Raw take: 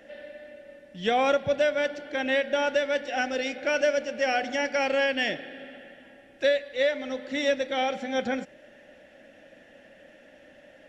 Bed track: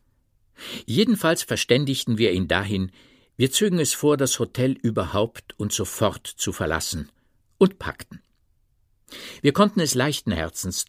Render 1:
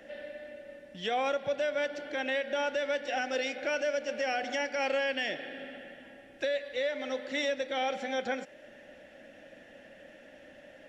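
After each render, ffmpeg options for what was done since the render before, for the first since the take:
ffmpeg -i in.wav -filter_complex "[0:a]acrossover=split=330[link_01][link_02];[link_01]acompressor=threshold=-48dB:ratio=6[link_03];[link_02]alimiter=limit=-23dB:level=0:latency=1:release=136[link_04];[link_03][link_04]amix=inputs=2:normalize=0" out.wav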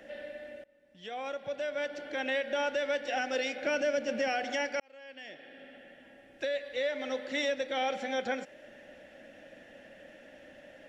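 ffmpeg -i in.wav -filter_complex "[0:a]asettb=1/sr,asplit=3[link_01][link_02][link_03];[link_01]atrim=end=3.664[link_04];[link_02]atrim=start=3.66:end=4.28,asetpts=PTS-STARTPTS,afade=type=in:duration=0.004:curve=qsin,afade=type=out:start_time=0.616:duration=0.004:curve=qsin,equalizer=frequency=200:width_type=o:width=1.2:gain=10[link_05];[link_03]atrim=start=4.276[link_06];[link_04][link_05]acrossfade=duration=0.004:curve1=hsin:curve2=qsin[link_07];[link_07][link_06]acrossfade=duration=0.004:curve1=qsin:curve2=hsin,asplit=3[link_08][link_09][link_10];[link_08]atrim=end=0.64,asetpts=PTS-STARTPTS,afade=type=out:start_time=0.636:duration=0.004:curve=hsin:silence=0.0749894[link_11];[link_09]atrim=start=0.64:end=4.8,asetpts=PTS-STARTPTS,afade=type=in:duration=1.69:silence=0.0749894,afade=type=out:start_time=4.156:duration=0.004:curve=hsin[link_12];[link_10]atrim=start=4.8,asetpts=PTS-STARTPTS,afade=type=in:duration=2.11[link_13];[link_11][link_12][link_13]concat=n=3:v=0:a=1" out.wav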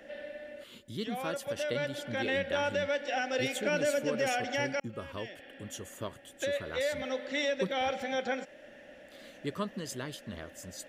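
ffmpeg -i in.wav -i bed.wav -filter_complex "[1:a]volume=-18dB[link_01];[0:a][link_01]amix=inputs=2:normalize=0" out.wav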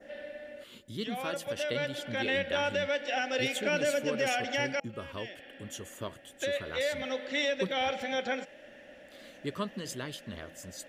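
ffmpeg -i in.wav -af "bandreject=frequency=163.5:width_type=h:width=4,bandreject=frequency=327:width_type=h:width=4,bandreject=frequency=490.5:width_type=h:width=4,bandreject=frequency=654:width_type=h:width=4,bandreject=frequency=817.5:width_type=h:width=4,adynamicequalizer=threshold=0.00447:dfrequency=2900:dqfactor=1.3:tfrequency=2900:tqfactor=1.3:attack=5:release=100:ratio=0.375:range=2:mode=boostabove:tftype=bell" out.wav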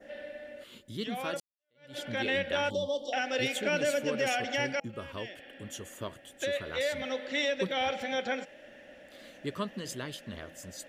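ffmpeg -i in.wav -filter_complex "[0:a]asettb=1/sr,asplit=3[link_01][link_02][link_03];[link_01]atrim=end=2.704[link_04];[link_02]atrim=start=2.7:end=3.13,asetpts=PTS-STARTPTS,afade=type=in:duration=0.004:curve=qsin,afade=type=out:start_time=0.426:duration=0.004:curve=qsin,asuperstop=centerf=1900:order=20:qfactor=0.95[link_05];[link_03]atrim=start=3.126[link_06];[link_04][link_05]acrossfade=duration=0.004:curve1=hsin:curve2=qsin[link_07];[link_07][link_06]acrossfade=duration=0.004:curve1=qsin:curve2=hsin,asplit=2[link_08][link_09];[link_08]atrim=end=1.4,asetpts=PTS-STARTPTS,afade=type=out:start_time=1.396:duration=0.004:curve=hsin[link_10];[link_09]atrim=start=1.4,asetpts=PTS-STARTPTS,afade=type=in:duration=0.57:curve=exp[link_11];[link_10][link_11]concat=n=2:v=0:a=1" out.wav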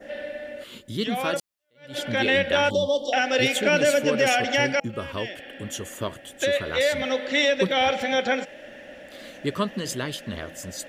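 ffmpeg -i in.wav -af "volume=9dB" out.wav

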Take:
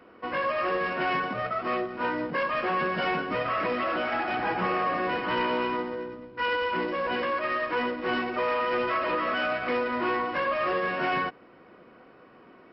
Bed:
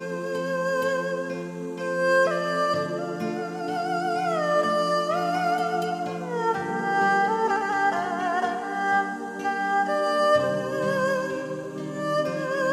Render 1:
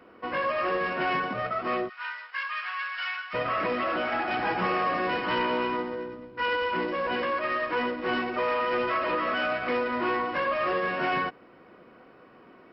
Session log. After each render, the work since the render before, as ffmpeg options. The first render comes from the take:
ffmpeg -i in.wav -filter_complex "[0:a]asplit=3[link_01][link_02][link_03];[link_01]afade=type=out:start_time=1.88:duration=0.02[link_04];[link_02]highpass=frequency=1300:width=0.5412,highpass=frequency=1300:width=1.3066,afade=type=in:start_time=1.88:duration=0.02,afade=type=out:start_time=3.33:duration=0.02[link_05];[link_03]afade=type=in:start_time=3.33:duration=0.02[link_06];[link_04][link_05][link_06]amix=inputs=3:normalize=0,asettb=1/sr,asplit=3[link_07][link_08][link_09];[link_07]atrim=end=4.314[link_10];[link_08]atrim=start=4.31:end=5.38,asetpts=PTS-STARTPTS,afade=type=in:duration=0.004:curve=qsin,afade=type=out:start_time=1.066:duration=0.004:curve=qsin,highshelf=frequency=4300:gain=7[link_11];[link_09]atrim=start=5.376[link_12];[link_10][link_11]acrossfade=duration=0.004:curve1=hsin:curve2=qsin[link_13];[link_13][link_12]acrossfade=duration=0.004:curve1=qsin:curve2=hsin" out.wav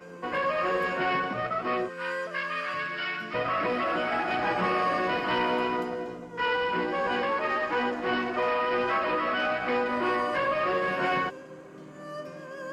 ffmpeg -i in.wav -i bed.wav -filter_complex "[1:a]volume=-14dB[link_01];[0:a][link_01]amix=inputs=2:normalize=0" out.wav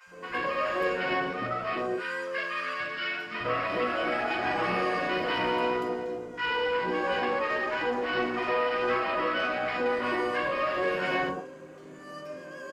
ffmpeg -i in.wav -filter_complex "[0:a]asplit=2[link_01][link_02];[link_02]adelay=43,volume=-10.5dB[link_03];[link_01][link_03]amix=inputs=2:normalize=0,acrossover=split=160|980[link_04][link_05][link_06];[link_04]adelay=60[link_07];[link_05]adelay=110[link_08];[link_07][link_08][link_06]amix=inputs=3:normalize=0" out.wav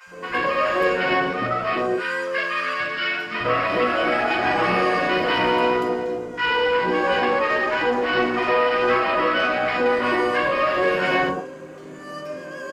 ffmpeg -i in.wav -af "volume=8dB" out.wav

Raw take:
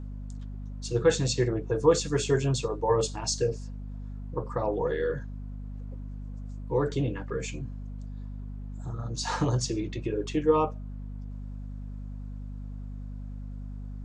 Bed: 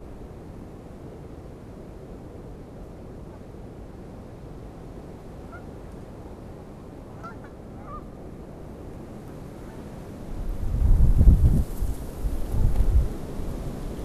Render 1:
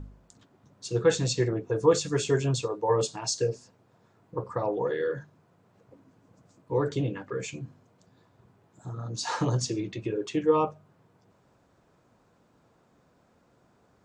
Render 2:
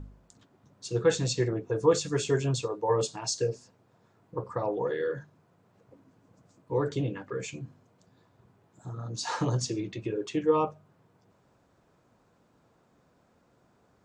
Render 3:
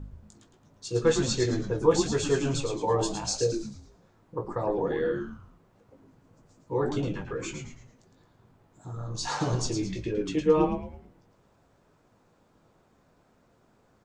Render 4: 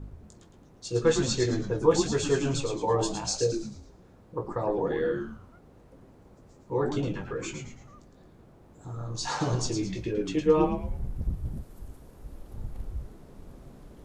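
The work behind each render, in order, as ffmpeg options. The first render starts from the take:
ffmpeg -i in.wav -af "bandreject=frequency=50:width_type=h:width=4,bandreject=frequency=100:width_type=h:width=4,bandreject=frequency=150:width_type=h:width=4,bandreject=frequency=200:width_type=h:width=4,bandreject=frequency=250:width_type=h:width=4" out.wav
ffmpeg -i in.wav -af "volume=-1.5dB" out.wav
ffmpeg -i in.wav -filter_complex "[0:a]asplit=2[link_01][link_02];[link_02]adelay=19,volume=-6dB[link_03];[link_01][link_03]amix=inputs=2:normalize=0,asplit=6[link_04][link_05][link_06][link_07][link_08][link_09];[link_05]adelay=110,afreqshift=-130,volume=-6.5dB[link_10];[link_06]adelay=220,afreqshift=-260,volume=-14.7dB[link_11];[link_07]adelay=330,afreqshift=-390,volume=-22.9dB[link_12];[link_08]adelay=440,afreqshift=-520,volume=-31dB[link_13];[link_09]adelay=550,afreqshift=-650,volume=-39.2dB[link_14];[link_04][link_10][link_11][link_12][link_13][link_14]amix=inputs=6:normalize=0" out.wav
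ffmpeg -i in.wav -i bed.wav -filter_complex "[1:a]volume=-15.5dB[link_01];[0:a][link_01]amix=inputs=2:normalize=0" out.wav

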